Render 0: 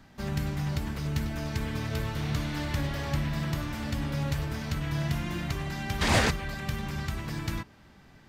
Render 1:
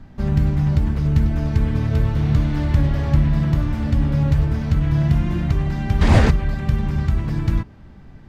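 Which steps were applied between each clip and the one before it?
spectral tilt −3 dB per octave
level +4 dB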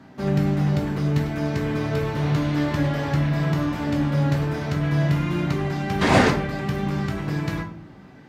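high-pass filter 230 Hz 12 dB per octave
rectangular room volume 49 cubic metres, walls mixed, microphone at 0.47 metres
level +2 dB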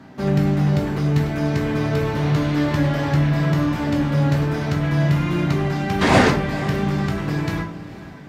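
in parallel at −11 dB: soft clipping −21.5 dBFS, distortion −10 dB
on the sum: feedback delay with all-pass diffusion 493 ms, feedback 47%, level −16 dB
level +1.5 dB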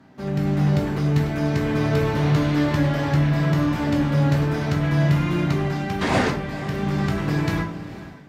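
automatic gain control
level −8 dB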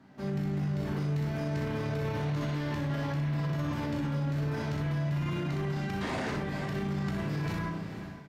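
on a send: ambience of single reflections 36 ms −7 dB, 62 ms −5 dB
on the sum: brickwall limiter −18.5 dBFS, peak gain reduction 12 dB
level −6.5 dB

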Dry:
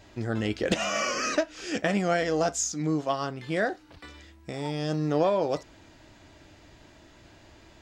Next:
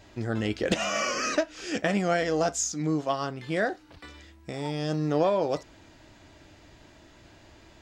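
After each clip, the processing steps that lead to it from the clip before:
no processing that can be heard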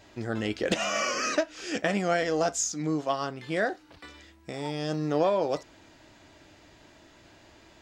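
low-shelf EQ 140 Hz −7.5 dB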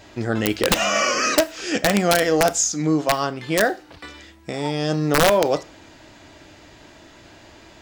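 wrap-around overflow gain 16 dB
on a send at −18 dB: convolution reverb RT60 0.40 s, pre-delay 25 ms
on the sum: level +8.5 dB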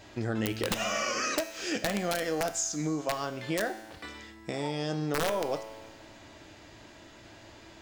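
downward compressor 3 to 1, threshold −24 dBFS, peak gain reduction 9.5 dB
tuned comb filter 110 Hz, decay 1.6 s, mix 70%
level +4.5 dB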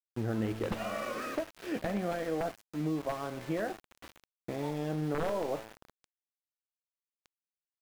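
head-to-tape spacing loss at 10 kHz 44 dB
centre clipping without the shift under −41.5 dBFS

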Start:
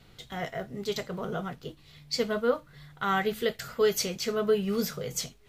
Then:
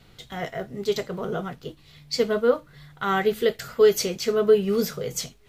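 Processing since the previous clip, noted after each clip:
dynamic equaliser 390 Hz, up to +6 dB, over −40 dBFS, Q 1.7
level +2.5 dB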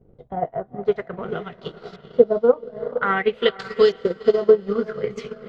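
auto-filter low-pass saw up 0.51 Hz 430–5,700 Hz
feedback delay with all-pass diffusion 456 ms, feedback 44%, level −9.5 dB
transient designer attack +7 dB, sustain −9 dB
level −2.5 dB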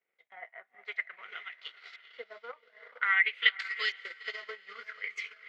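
high-pass with resonance 2,100 Hz, resonance Q 6.4
level −7 dB

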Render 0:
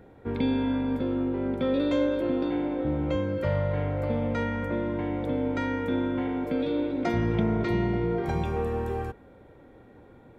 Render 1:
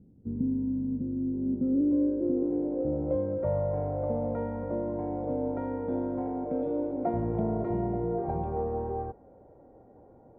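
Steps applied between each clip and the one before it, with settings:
low-pass filter sweep 210 Hz → 720 Hz, 0:01.15–0:03.45
level −5.5 dB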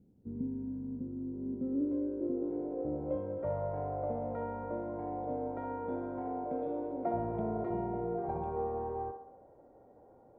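low-shelf EQ 370 Hz −7 dB
feedback echo with a band-pass in the loop 64 ms, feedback 59%, band-pass 780 Hz, level −5 dB
level −2.5 dB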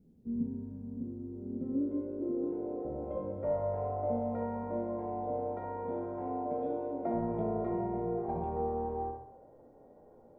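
rectangular room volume 240 cubic metres, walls furnished, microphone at 1.4 metres
level −1.5 dB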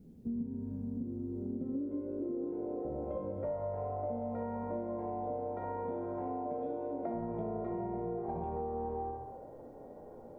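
downward compressor 5 to 1, threshold −43 dBFS, peak gain reduction 13.5 dB
level +7.5 dB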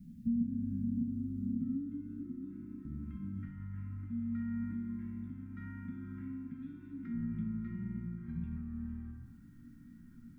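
elliptic band-stop filter 210–1,700 Hz, stop band 80 dB
parametric band 490 Hz −5.5 dB 0.65 octaves
hollow resonant body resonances 270/680/1,300 Hz, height 9 dB, ringing for 25 ms
level +3 dB

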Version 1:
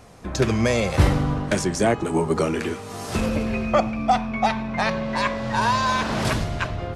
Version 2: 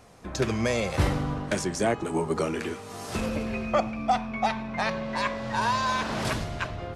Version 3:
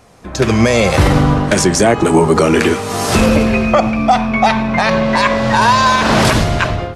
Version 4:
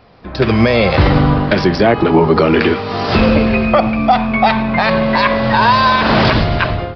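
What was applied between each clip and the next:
low-shelf EQ 220 Hz −3.5 dB; level −4.5 dB
automatic gain control gain up to 16.5 dB; brickwall limiter −8 dBFS, peak gain reduction 6.5 dB; level +6.5 dB
downsampling to 11,025 Hz

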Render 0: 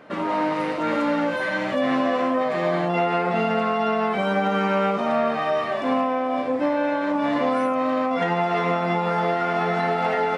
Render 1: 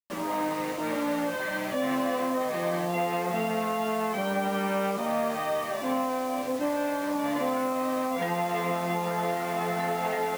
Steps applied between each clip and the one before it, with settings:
notch filter 1,400 Hz, Q 15
bit reduction 6 bits
level −6 dB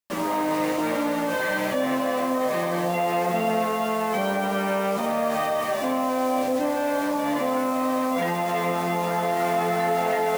in parallel at −3 dB: compressor whose output falls as the input rises −31 dBFS
on the sum: feedback echo with a band-pass in the loop 136 ms, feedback 82%, band-pass 560 Hz, level −10 dB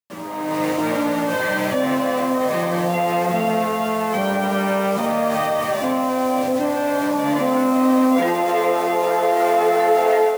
automatic gain control gain up to 12.5 dB
high-pass filter sweep 97 Hz → 410 Hz, 0:06.85–0:08.66
level −7 dB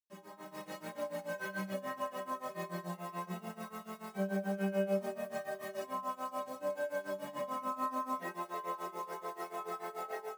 amplitude tremolo 6.9 Hz, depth 90%
stiff-string resonator 190 Hz, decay 0.2 s, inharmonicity 0.008
level −5.5 dB

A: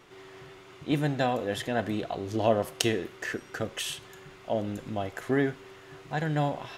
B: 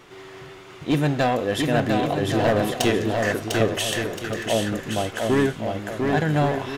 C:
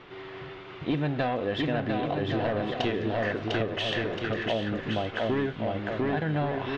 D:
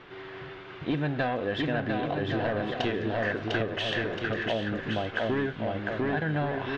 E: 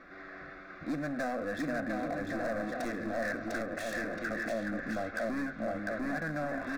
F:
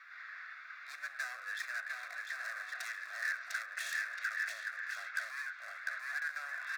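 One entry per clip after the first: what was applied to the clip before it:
gain into a clipping stage and back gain 22 dB; bouncing-ball delay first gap 700 ms, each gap 0.6×, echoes 5; level +7 dB
low-pass filter 3,900 Hz 24 dB per octave; downward compressor, threshold −25 dBFS, peak gain reduction 10.5 dB
parametric band 1,600 Hz +6.5 dB 0.21 octaves; level −1 dB
hard clipping −28.5 dBFS, distortion −10 dB; phaser with its sweep stopped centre 610 Hz, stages 8
high-pass filter 1,400 Hz 24 dB per octave; level +2.5 dB

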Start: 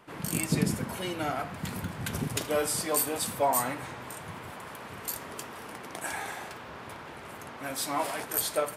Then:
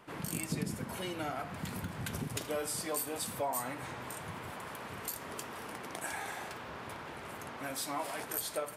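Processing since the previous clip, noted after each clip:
downward compressor 2 to 1, threshold −37 dBFS, peak gain reduction 10 dB
level −1 dB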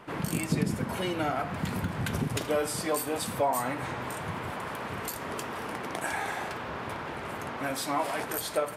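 high-shelf EQ 4,400 Hz −8 dB
level +8.5 dB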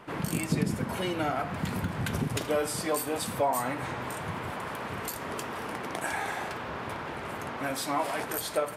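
no processing that can be heard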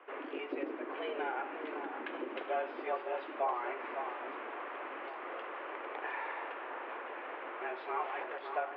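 delay that swaps between a low-pass and a high-pass 557 ms, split 1,400 Hz, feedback 55%, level −7 dB
single-sideband voice off tune +110 Hz 210–2,800 Hz
level −7 dB

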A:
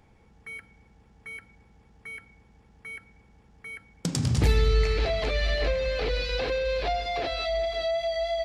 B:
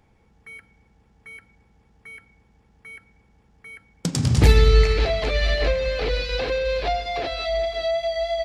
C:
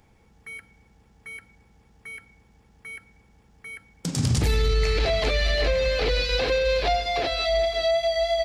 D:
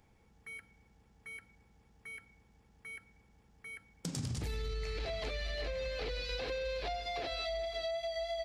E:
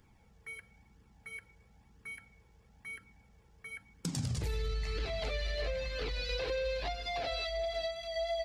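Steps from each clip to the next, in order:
expander for the loud parts 1.5 to 1, over −37 dBFS; level +8.5 dB
high-shelf EQ 4,600 Hz +7 dB; brickwall limiter −15 dBFS, peak gain reduction 12 dB; level +1 dB
downward compressor 6 to 1, threshold −27 dBFS, peak gain reduction 9 dB; level −8 dB
flanger 1 Hz, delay 0.6 ms, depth 1.6 ms, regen −31%; level +5.5 dB

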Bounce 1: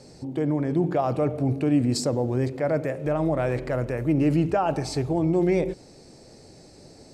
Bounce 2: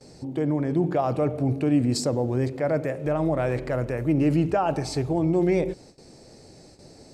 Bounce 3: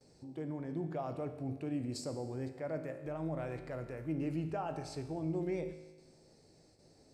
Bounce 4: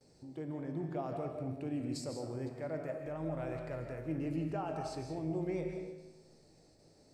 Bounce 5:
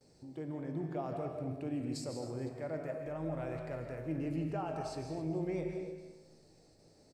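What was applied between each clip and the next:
noise gate with hold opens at −40 dBFS
tuned comb filter 53 Hz, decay 1.2 s, harmonics all, mix 70%; level −7 dB
comb and all-pass reverb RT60 0.8 s, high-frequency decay 0.5×, pre-delay 115 ms, DRR 4.5 dB; level −1 dB
single-tap delay 266 ms −14 dB

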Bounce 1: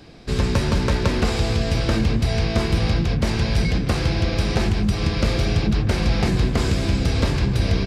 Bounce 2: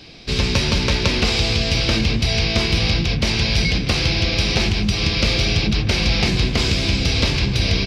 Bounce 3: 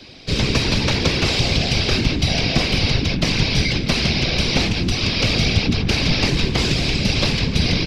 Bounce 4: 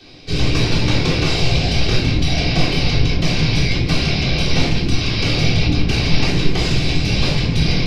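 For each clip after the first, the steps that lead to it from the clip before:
flat-topped bell 3,600 Hz +10.5 dB
random phases in short frames
rectangular room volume 660 cubic metres, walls furnished, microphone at 3.6 metres; level −5.5 dB

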